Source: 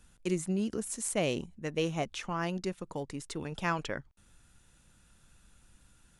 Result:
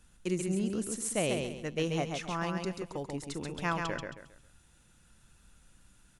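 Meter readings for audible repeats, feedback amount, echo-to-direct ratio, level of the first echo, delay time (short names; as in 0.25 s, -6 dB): 4, 32%, -4.0 dB, -4.5 dB, 0.135 s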